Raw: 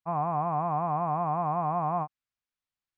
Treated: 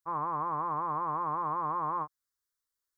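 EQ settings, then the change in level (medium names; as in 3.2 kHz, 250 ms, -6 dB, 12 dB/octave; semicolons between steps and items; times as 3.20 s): treble shelf 2 kHz +9 dB; static phaser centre 710 Hz, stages 6; 0.0 dB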